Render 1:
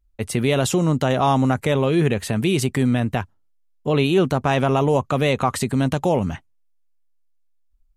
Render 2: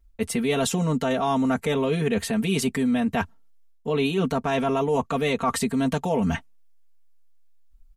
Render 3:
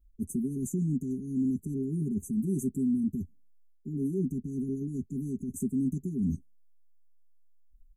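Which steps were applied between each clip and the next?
comb filter 4.4 ms, depth 99%; reversed playback; downward compressor 5 to 1, threshold −25 dBFS, peak gain reduction 13.5 dB; reversed playback; level +3.5 dB
linear-phase brick-wall band-stop 400–5,900 Hz; parametric band 4,500 Hz −10.5 dB 2.2 octaves; level −4.5 dB

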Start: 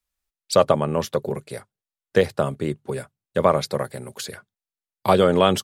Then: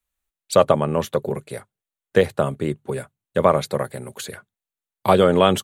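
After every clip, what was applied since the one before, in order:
parametric band 5,100 Hz −10 dB 0.35 octaves
level +1.5 dB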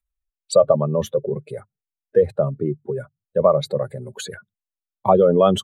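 expanding power law on the bin magnitudes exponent 2
level +1 dB

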